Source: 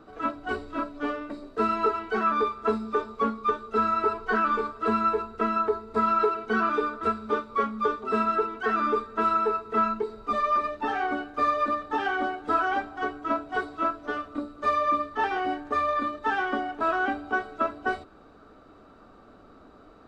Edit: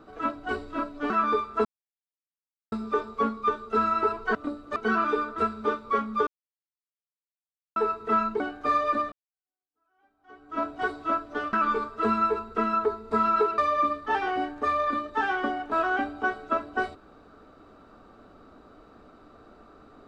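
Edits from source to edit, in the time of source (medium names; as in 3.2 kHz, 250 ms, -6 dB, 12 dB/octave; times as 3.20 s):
1.10–2.18 s: delete
2.73 s: insert silence 1.07 s
4.36–6.41 s: swap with 14.26–14.67 s
7.92–9.41 s: mute
10.05–11.13 s: delete
11.85–13.36 s: fade in exponential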